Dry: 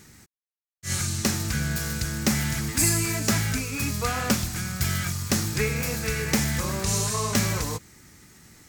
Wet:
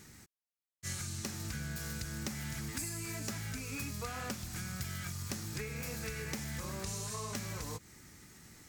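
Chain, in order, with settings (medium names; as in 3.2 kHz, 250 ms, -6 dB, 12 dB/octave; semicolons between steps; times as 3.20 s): compression 10:1, threshold -32 dBFS, peak gain reduction 15 dB; trim -4.5 dB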